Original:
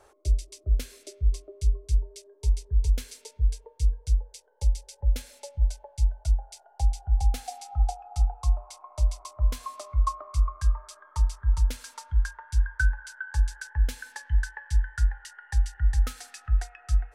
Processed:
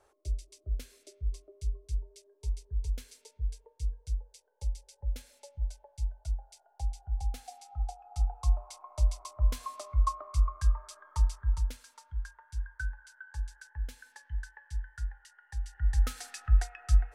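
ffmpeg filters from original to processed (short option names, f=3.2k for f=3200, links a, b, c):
-af "volume=10dB,afade=t=in:st=7.95:d=0.57:silence=0.446684,afade=t=out:st=11.26:d=0.59:silence=0.334965,afade=t=in:st=15.6:d=0.67:silence=0.237137"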